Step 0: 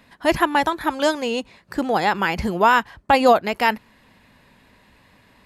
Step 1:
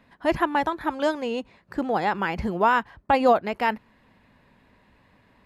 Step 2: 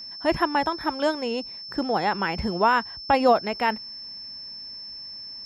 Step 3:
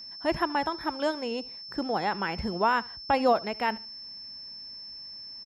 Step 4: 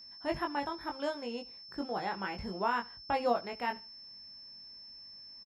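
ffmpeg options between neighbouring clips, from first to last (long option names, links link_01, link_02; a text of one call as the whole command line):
ffmpeg -i in.wav -af "highshelf=frequency=3400:gain=-12,volume=-3.5dB" out.wav
ffmpeg -i in.wav -af "aeval=exprs='val(0)+0.0158*sin(2*PI*5300*n/s)':channel_layout=same" out.wav
ffmpeg -i in.wav -af "aecho=1:1:73|146:0.0794|0.023,volume=-4.5dB" out.wav
ffmpeg -i in.wav -filter_complex "[0:a]asplit=2[link_01][link_02];[link_02]adelay=21,volume=-4dB[link_03];[link_01][link_03]amix=inputs=2:normalize=0,volume=-8.5dB" out.wav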